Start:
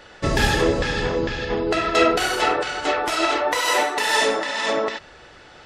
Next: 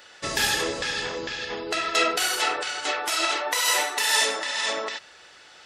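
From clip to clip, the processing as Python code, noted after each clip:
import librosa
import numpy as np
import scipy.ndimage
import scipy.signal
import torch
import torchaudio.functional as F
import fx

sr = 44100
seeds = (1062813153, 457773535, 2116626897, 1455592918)

y = fx.tilt_eq(x, sr, slope=3.5)
y = F.gain(torch.from_numpy(y), -6.0).numpy()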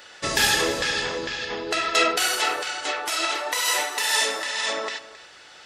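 y = fx.rider(x, sr, range_db=10, speed_s=2.0)
y = y + 10.0 ** (-17.0 / 20.0) * np.pad(y, (int(268 * sr / 1000.0), 0))[:len(y)]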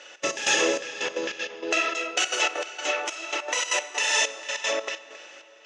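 y = fx.step_gate(x, sr, bpm=194, pattern='xx.x..xxxx...x.', floor_db=-12.0, edge_ms=4.5)
y = fx.cabinet(y, sr, low_hz=240.0, low_slope=12, high_hz=7100.0, hz=(330.0, 560.0, 2700.0, 4400.0, 6300.0), db=(5, 9, 9, -7, 10))
y = fx.rev_freeverb(y, sr, rt60_s=4.6, hf_ratio=0.7, predelay_ms=60, drr_db=17.5)
y = F.gain(torch.from_numpy(y), -3.0).numpy()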